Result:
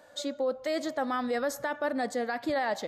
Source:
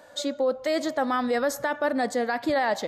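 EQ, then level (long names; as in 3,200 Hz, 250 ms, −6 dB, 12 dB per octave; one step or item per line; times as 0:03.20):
notch filter 970 Hz, Q 28
−5.0 dB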